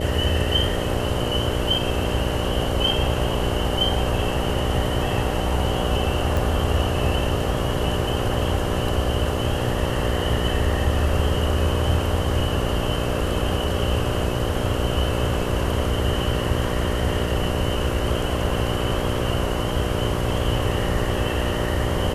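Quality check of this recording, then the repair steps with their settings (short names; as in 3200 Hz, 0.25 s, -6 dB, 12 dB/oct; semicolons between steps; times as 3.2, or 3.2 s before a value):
buzz 60 Hz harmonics 10 -27 dBFS
6.37 pop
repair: de-click; de-hum 60 Hz, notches 10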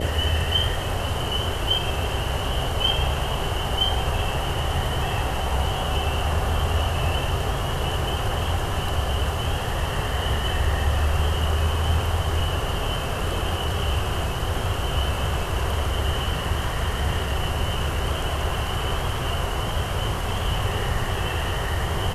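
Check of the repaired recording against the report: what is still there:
none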